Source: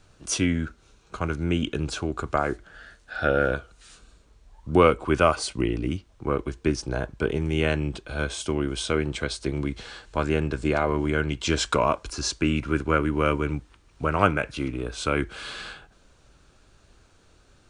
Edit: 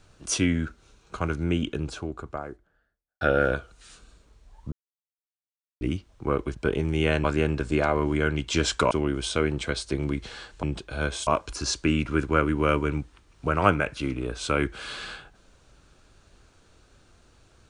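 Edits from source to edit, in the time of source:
0:01.17–0:03.21: fade out and dull
0:04.72–0:05.81: silence
0:06.55–0:07.12: remove
0:07.81–0:08.45: swap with 0:10.17–0:11.84

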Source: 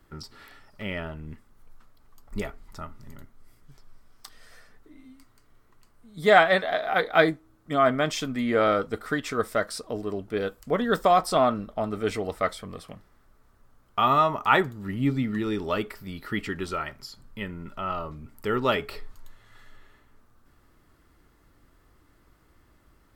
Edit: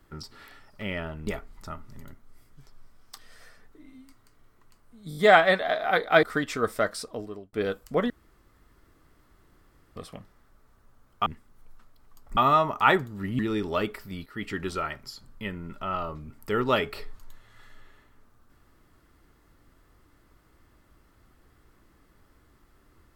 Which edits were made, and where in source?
0:01.27–0:02.38: move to 0:14.02
0:06.20: stutter 0.02 s, 5 plays
0:07.26–0:08.99: remove
0:09.54–0:10.29: fade out equal-power
0:10.86–0:12.72: fill with room tone
0:15.04–0:15.35: remove
0:16.22–0:16.54: fade in, from −15.5 dB

